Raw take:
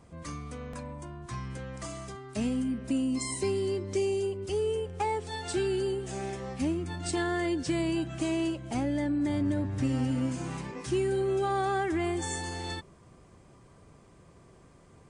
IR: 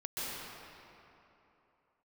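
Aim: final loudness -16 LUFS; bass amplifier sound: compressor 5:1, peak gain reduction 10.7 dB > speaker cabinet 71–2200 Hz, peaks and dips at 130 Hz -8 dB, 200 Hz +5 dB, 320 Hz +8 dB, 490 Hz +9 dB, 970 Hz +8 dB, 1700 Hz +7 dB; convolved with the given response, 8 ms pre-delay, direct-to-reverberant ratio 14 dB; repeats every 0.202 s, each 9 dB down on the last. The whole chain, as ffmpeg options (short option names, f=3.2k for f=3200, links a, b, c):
-filter_complex "[0:a]aecho=1:1:202|404|606|808:0.355|0.124|0.0435|0.0152,asplit=2[a][b];[1:a]atrim=start_sample=2205,adelay=8[c];[b][c]afir=irnorm=-1:irlink=0,volume=-18.5dB[d];[a][d]amix=inputs=2:normalize=0,acompressor=threshold=-34dB:ratio=5,highpass=f=71:w=0.5412,highpass=f=71:w=1.3066,equalizer=f=130:t=q:w=4:g=-8,equalizer=f=200:t=q:w=4:g=5,equalizer=f=320:t=q:w=4:g=8,equalizer=f=490:t=q:w=4:g=9,equalizer=f=970:t=q:w=4:g=8,equalizer=f=1.7k:t=q:w=4:g=7,lowpass=f=2.2k:w=0.5412,lowpass=f=2.2k:w=1.3066,volume=16.5dB"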